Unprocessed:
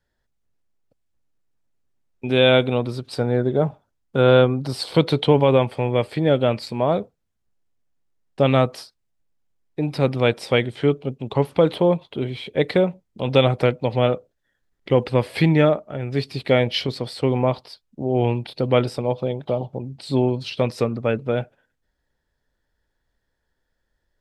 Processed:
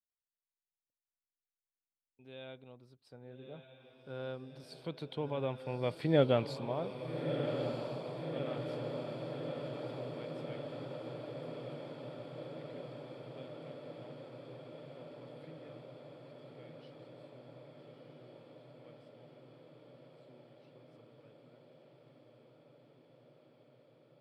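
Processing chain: Doppler pass-by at 6.21 s, 7 m/s, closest 1.5 m; echo that smears into a reverb 1274 ms, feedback 77%, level -6 dB; trim -8.5 dB

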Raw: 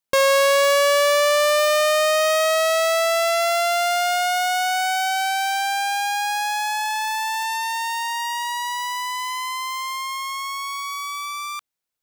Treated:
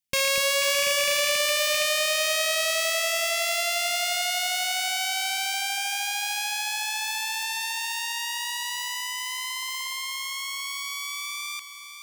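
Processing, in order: rattle on loud lows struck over -39 dBFS, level -18 dBFS; high-order bell 700 Hz -12.5 dB 2.7 oct; band-stop 4 kHz, Q 19; echo whose repeats swap between lows and highs 245 ms, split 900 Hz, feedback 67%, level -6 dB

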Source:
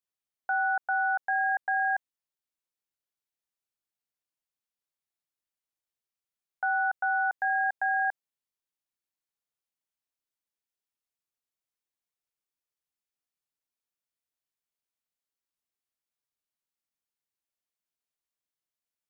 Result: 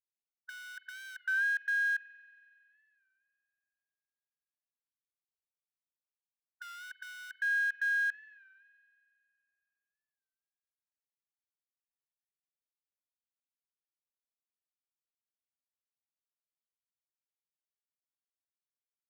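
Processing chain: companding laws mixed up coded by A; brick-wall FIR high-pass 1.5 kHz; spring tank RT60 2.5 s, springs 43 ms, chirp 45 ms, DRR 13.5 dB; warped record 33 1/3 rpm, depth 100 cents

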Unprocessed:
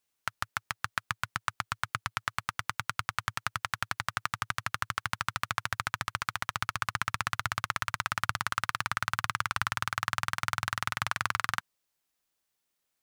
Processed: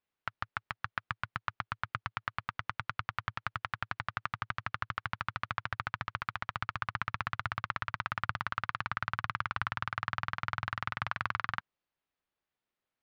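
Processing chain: distance through air 290 m; trim -1.5 dB

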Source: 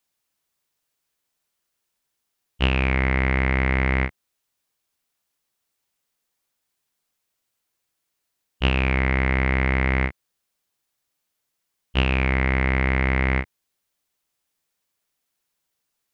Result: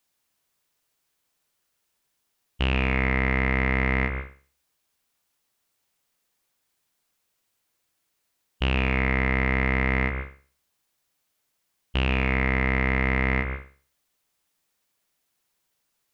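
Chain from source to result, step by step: peak limiter -13.5 dBFS, peak gain reduction 8.5 dB; reverberation, pre-delay 133 ms, DRR 7.5 dB; trim +2.5 dB

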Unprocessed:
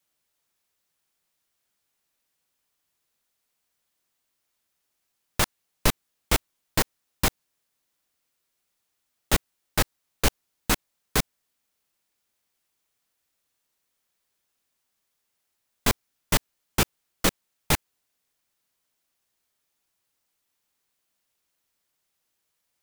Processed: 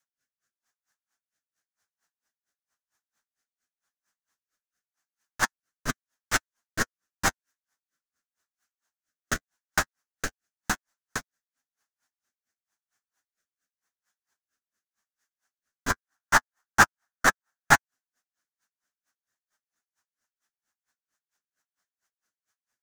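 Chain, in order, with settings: flange 0.17 Hz, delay 7.1 ms, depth 6.5 ms, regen -23%; peak limiter -13.5 dBFS, peak gain reduction 6 dB; fifteen-band graphic EQ 250 Hz +5 dB, 1.6 kHz +8 dB, 6.3 kHz +11 dB; rotary cabinet horn 0.9 Hz, later 6.7 Hz, at 16.08 s; high-order bell 1.1 kHz +8 dB, from 15.90 s +15.5 dB, from 17.74 s +8.5 dB; logarithmic tremolo 4.4 Hz, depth 33 dB

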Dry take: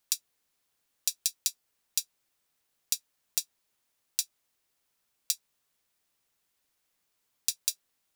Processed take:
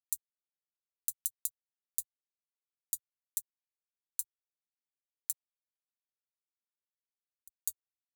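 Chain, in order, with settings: 5.33–7.54 s: amplifier tone stack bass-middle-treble 10-0-1; vibrato 1 Hz 92 cents; crossover distortion -43.5 dBFS; inverse Chebyshev band-stop 350–2000 Hz, stop band 60 dB; static phaser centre 1.5 kHz, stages 6

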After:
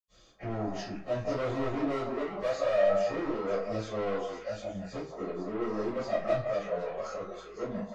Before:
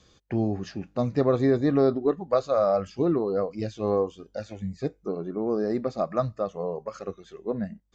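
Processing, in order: in parallel at +0.5 dB: peak limiter -18.5 dBFS, peak gain reduction 7 dB; on the sum: saturation -21 dBFS, distortion -9 dB; repeats whose band climbs or falls 168 ms, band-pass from 790 Hz, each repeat 1.4 oct, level -1.5 dB; reverberation RT60 0.35 s, pre-delay 80 ms; trim +1 dB

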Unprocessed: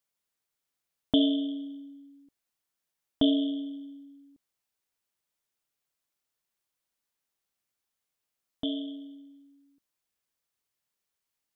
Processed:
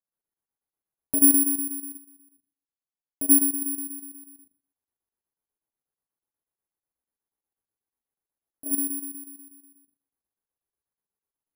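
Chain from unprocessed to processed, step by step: Bessel low-pass 1.2 kHz, order 6; reverberation RT60 0.35 s, pre-delay 73 ms, DRR -3.5 dB; square tremolo 8.2 Hz, depth 65%, duty 75%; careless resampling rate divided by 4×, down none, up zero stuff; 1.97–3.62 s: upward expansion 1.5:1, over -24 dBFS; trim -7 dB

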